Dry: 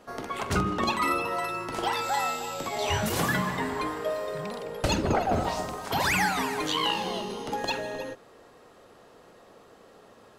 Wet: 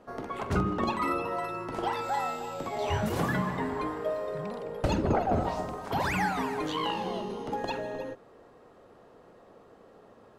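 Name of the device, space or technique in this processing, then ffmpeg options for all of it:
through cloth: -af "highshelf=frequency=2000:gain=-12.5"

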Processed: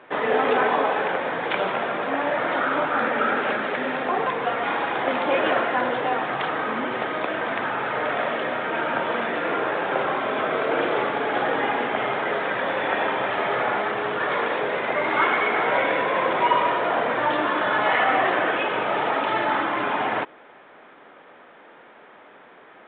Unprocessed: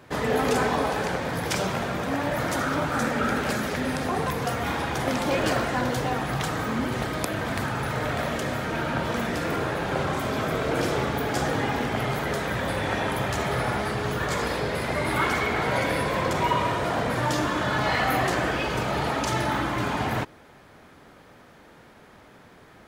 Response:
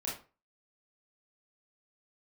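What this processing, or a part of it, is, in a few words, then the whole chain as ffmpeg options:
telephone: -af "highpass=390,lowpass=3100,volume=5dB" -ar 8000 -c:a pcm_mulaw

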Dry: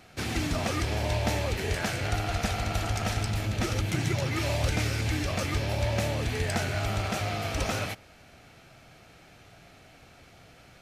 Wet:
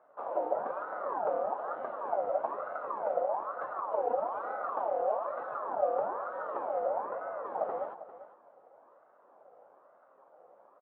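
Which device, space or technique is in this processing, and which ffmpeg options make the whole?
voice changer toy: -filter_complex "[0:a]aeval=exprs='val(0)*sin(2*PI*1000*n/s+1000*0.4/1.1*sin(2*PI*1.1*n/s))':channel_layout=same,highpass=530,equalizer=frequency=560:width_type=q:width=4:gain=7,equalizer=frequency=910:width_type=q:width=4:gain=-4,equalizer=frequency=2000:width_type=q:width=4:gain=-3,equalizer=frequency=4000:width_type=q:width=4:gain=7,lowpass=frequency=4200:width=0.5412,lowpass=frequency=4200:width=1.3066,asettb=1/sr,asplit=3[link_01][link_02][link_03];[link_01]atrim=end=6.864[link_04];[link_02]atrim=start=6.86:end=7.46,asetpts=PTS-STARTPTS,afade=type=in:duration=0.004:curve=qsin,afade=type=out:start_time=0.596:duration=0.004:curve=qsin,acrossover=split=2600[link_05][link_06];[link_06]acompressor=threshold=-53dB:ratio=4:attack=1:release=60[link_07];[link_05][link_07]amix=inputs=2:normalize=0[link_08];[link_03]atrim=start=7.456[link_09];[link_04][link_08]acrossfade=duration=0.004:curve1=hsin:curve2=qsin[link_10];[link_10][link_09]acrossfade=duration=0.004:curve1=qsin:curve2=hsin,lowpass=frequency=1000:width=0.5412,lowpass=frequency=1000:width=1.3066,aecho=1:1:398:0.188,volume=1.5dB"

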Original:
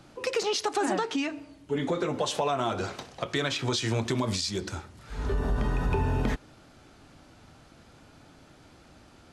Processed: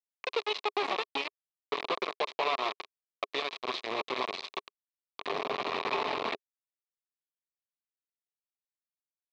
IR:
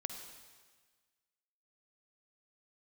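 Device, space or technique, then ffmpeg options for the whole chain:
hand-held game console: -af "aecho=1:1:698:0.251,acrusher=bits=3:mix=0:aa=0.000001,highpass=400,equalizer=frequency=410:width_type=q:width=4:gain=7,equalizer=frequency=670:width_type=q:width=4:gain=4,equalizer=frequency=1100:width_type=q:width=4:gain=10,equalizer=frequency=1500:width_type=q:width=4:gain=-8,equalizer=frequency=2400:width_type=q:width=4:gain=6,equalizer=frequency=3900:width_type=q:width=4:gain=6,lowpass=frequency=4300:width=0.5412,lowpass=frequency=4300:width=1.3066,volume=-7dB"

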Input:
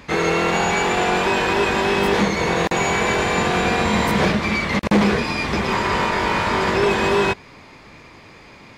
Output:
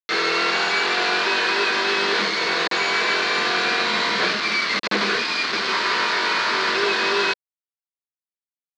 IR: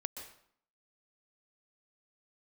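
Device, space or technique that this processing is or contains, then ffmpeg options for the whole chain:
hand-held game console: -af "acrusher=bits=3:mix=0:aa=0.000001,highpass=460,equalizer=frequency=550:width_type=q:width=4:gain=-7,equalizer=frequency=830:width_type=q:width=4:gain=-9,equalizer=frequency=1500:width_type=q:width=4:gain=4,equalizer=frequency=4300:width_type=q:width=4:gain=8,lowpass=frequency=5100:width=0.5412,lowpass=frequency=5100:width=1.3066"

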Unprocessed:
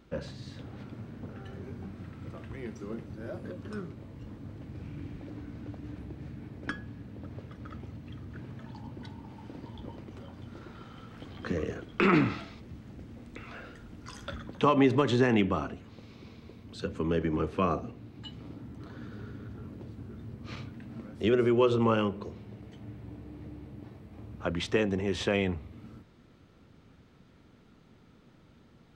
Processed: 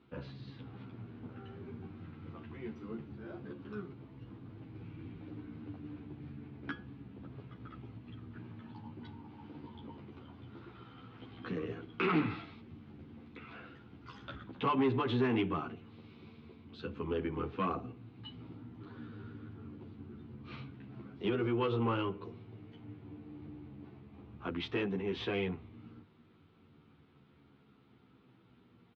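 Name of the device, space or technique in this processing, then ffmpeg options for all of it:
barber-pole flanger into a guitar amplifier: -filter_complex "[0:a]asplit=2[link_01][link_02];[link_02]adelay=11.7,afreqshift=-0.29[link_03];[link_01][link_03]amix=inputs=2:normalize=1,asoftclip=type=tanh:threshold=-22dB,highpass=100,equalizer=frequency=190:width_type=q:width=4:gain=-3,equalizer=frequency=580:width_type=q:width=4:gain=-10,equalizer=frequency=1800:width_type=q:width=4:gain=-5,lowpass=frequency=3700:width=0.5412,lowpass=frequency=3700:width=1.3066"

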